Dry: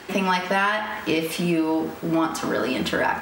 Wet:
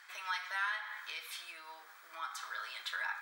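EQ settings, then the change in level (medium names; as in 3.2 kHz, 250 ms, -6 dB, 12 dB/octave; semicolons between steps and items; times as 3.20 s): band-stop 2.8 kHz, Q 6.6; dynamic bell 3.8 kHz, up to +8 dB, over -52 dBFS, Q 5.2; ladder high-pass 1.1 kHz, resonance 35%; -7.5 dB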